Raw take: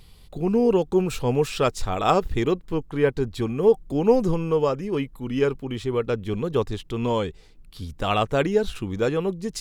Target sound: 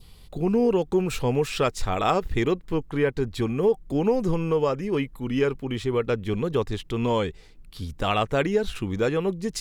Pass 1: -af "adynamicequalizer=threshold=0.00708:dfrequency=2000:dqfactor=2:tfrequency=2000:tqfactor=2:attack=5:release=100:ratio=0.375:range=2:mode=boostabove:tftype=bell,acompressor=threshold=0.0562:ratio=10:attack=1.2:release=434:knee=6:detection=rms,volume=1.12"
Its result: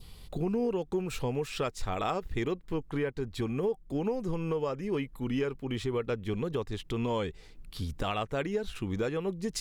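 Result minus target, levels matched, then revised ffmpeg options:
compression: peak gain reduction +10 dB
-af "adynamicequalizer=threshold=0.00708:dfrequency=2000:dqfactor=2:tfrequency=2000:tqfactor=2:attack=5:release=100:ratio=0.375:range=2:mode=boostabove:tftype=bell,acompressor=threshold=0.2:ratio=10:attack=1.2:release=434:knee=6:detection=rms,volume=1.12"

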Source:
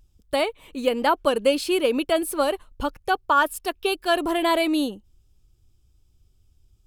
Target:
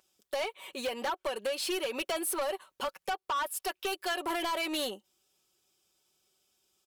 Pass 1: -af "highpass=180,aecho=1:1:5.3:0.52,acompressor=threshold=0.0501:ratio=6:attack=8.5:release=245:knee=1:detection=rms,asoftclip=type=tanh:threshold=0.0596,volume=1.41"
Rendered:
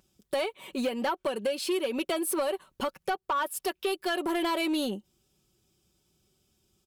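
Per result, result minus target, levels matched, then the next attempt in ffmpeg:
250 Hz band +6.0 dB; saturation: distortion -7 dB
-af "highpass=560,aecho=1:1:5.3:0.52,acompressor=threshold=0.0501:ratio=6:attack=8.5:release=245:knee=1:detection=rms,asoftclip=type=tanh:threshold=0.0596,volume=1.41"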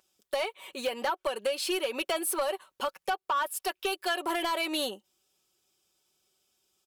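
saturation: distortion -6 dB
-af "highpass=560,aecho=1:1:5.3:0.52,acompressor=threshold=0.0501:ratio=6:attack=8.5:release=245:knee=1:detection=rms,asoftclip=type=tanh:threshold=0.0299,volume=1.41"

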